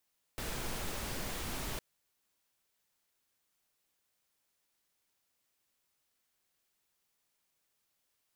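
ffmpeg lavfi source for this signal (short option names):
-f lavfi -i "anoisesrc=c=pink:a=0.061:d=1.41:r=44100:seed=1"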